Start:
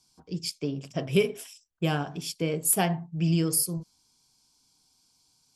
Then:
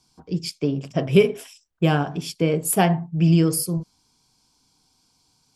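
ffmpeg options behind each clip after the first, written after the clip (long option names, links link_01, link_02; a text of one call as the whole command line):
ffmpeg -i in.wav -af "highshelf=frequency=3400:gain=-9,volume=8dB" out.wav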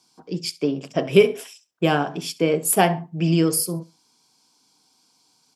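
ffmpeg -i in.wav -af "highpass=240,aecho=1:1:67|134:0.0891|0.0232,volume=2.5dB" out.wav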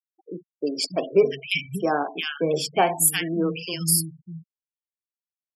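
ffmpeg -i in.wav -filter_complex "[0:a]tiltshelf=frequency=690:gain=-3.5,acrossover=split=200|1600[link_01][link_02][link_03];[link_03]adelay=350[link_04];[link_01]adelay=590[link_05];[link_05][link_02][link_04]amix=inputs=3:normalize=0,afftfilt=real='re*gte(hypot(re,im),0.0316)':imag='im*gte(hypot(re,im),0.0316)':win_size=1024:overlap=0.75,volume=-1dB" out.wav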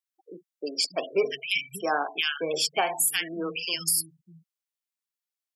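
ffmpeg -i in.wav -af "highpass=frequency=1400:poles=1,alimiter=limit=-17.5dB:level=0:latency=1:release=145,volume=4dB" out.wav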